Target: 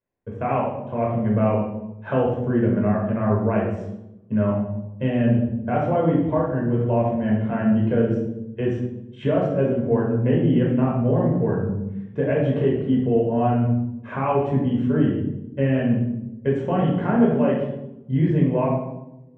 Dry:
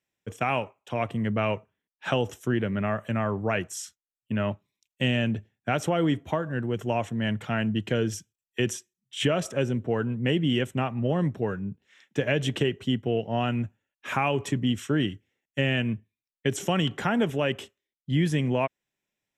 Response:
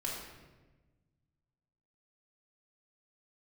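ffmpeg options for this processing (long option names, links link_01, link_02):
-filter_complex "[0:a]lowpass=1100[link_01];[1:a]atrim=start_sample=2205,asetrate=70560,aresample=44100[link_02];[link_01][link_02]afir=irnorm=-1:irlink=0,volume=7dB"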